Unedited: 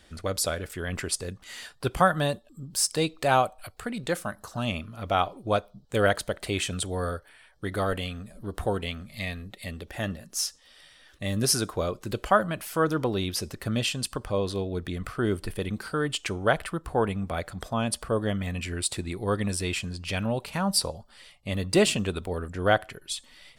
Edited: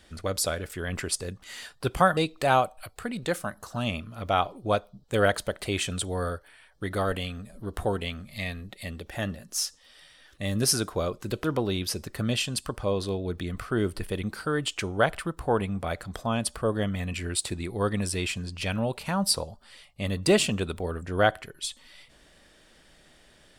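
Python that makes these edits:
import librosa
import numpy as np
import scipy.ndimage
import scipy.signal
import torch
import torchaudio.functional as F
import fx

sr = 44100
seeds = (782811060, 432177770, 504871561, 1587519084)

y = fx.edit(x, sr, fx.cut(start_s=2.17, length_s=0.81),
    fx.cut(start_s=12.25, length_s=0.66), tone=tone)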